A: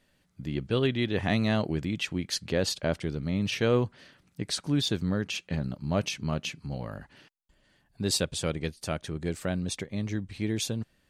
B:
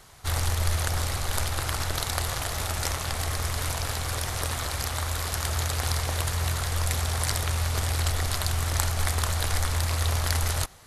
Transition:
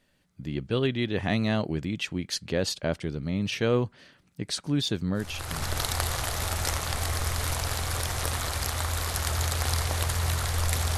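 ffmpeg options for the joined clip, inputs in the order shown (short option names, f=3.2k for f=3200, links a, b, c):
-filter_complex "[0:a]apad=whole_dur=10.97,atrim=end=10.97,atrim=end=5.79,asetpts=PTS-STARTPTS[a];[1:a]atrim=start=1.31:end=7.15,asetpts=PTS-STARTPTS[b];[a][b]acrossfade=d=0.66:c1=tri:c2=tri"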